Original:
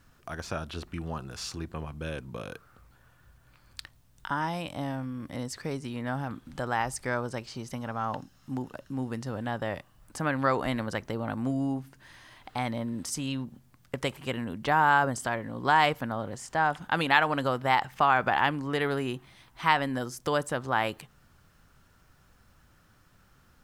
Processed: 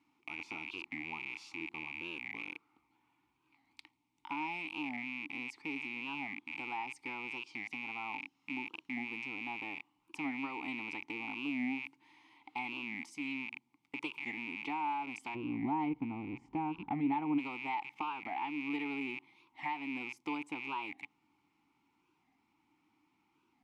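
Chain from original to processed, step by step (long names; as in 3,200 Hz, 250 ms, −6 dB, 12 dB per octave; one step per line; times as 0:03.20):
loose part that buzzes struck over −48 dBFS, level −22 dBFS
spectral tilt +2.5 dB per octave, from 0:15.34 −4 dB per octave, from 0:17.37 +2 dB per octave
downward compressor 4 to 1, threshold −27 dBFS, peak gain reduction 10 dB
formant filter u
wow of a warped record 45 rpm, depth 160 cents
level +5 dB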